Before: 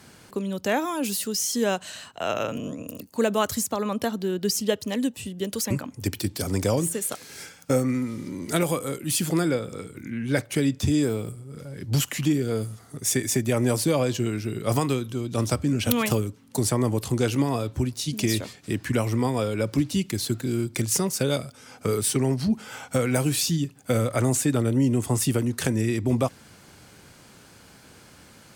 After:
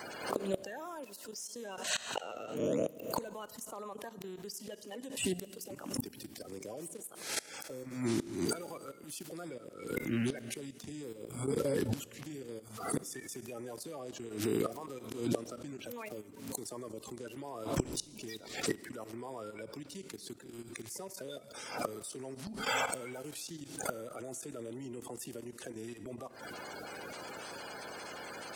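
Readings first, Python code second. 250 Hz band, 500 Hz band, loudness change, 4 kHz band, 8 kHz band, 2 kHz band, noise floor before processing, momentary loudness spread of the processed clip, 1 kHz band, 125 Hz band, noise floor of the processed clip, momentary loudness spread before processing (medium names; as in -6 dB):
-15.0 dB, -12.0 dB, -14.0 dB, -11.5 dB, -13.5 dB, -9.5 dB, -51 dBFS, 11 LU, -10.5 dB, -19.5 dB, -53 dBFS, 9 LU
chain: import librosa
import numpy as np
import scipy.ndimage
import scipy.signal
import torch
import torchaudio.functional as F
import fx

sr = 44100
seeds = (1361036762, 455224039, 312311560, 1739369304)

y = fx.spec_quant(x, sr, step_db=30)
y = fx.highpass(y, sr, hz=320.0, slope=6)
y = fx.peak_eq(y, sr, hz=600.0, db=4.5, octaves=1.7)
y = fx.level_steps(y, sr, step_db=14)
y = fx.gate_flip(y, sr, shuts_db=-31.0, range_db=-26)
y = fx.rev_schroeder(y, sr, rt60_s=1.6, comb_ms=26, drr_db=19.0)
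y = fx.pre_swell(y, sr, db_per_s=84.0)
y = y * librosa.db_to_amplitude(10.5)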